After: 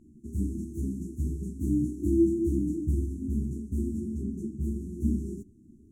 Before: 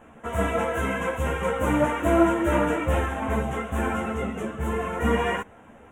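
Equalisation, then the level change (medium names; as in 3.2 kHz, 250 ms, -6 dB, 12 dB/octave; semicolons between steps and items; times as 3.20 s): brick-wall FIR band-stop 400–4900 Hz; treble shelf 2.3 kHz -8.5 dB; -1.5 dB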